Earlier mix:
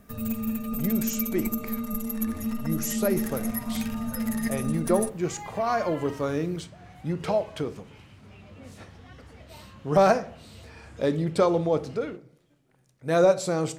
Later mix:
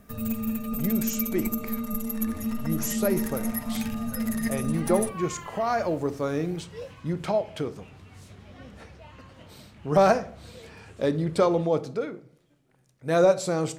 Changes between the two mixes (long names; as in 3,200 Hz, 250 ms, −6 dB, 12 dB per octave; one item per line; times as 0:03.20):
first sound: send on
second sound: entry −0.50 s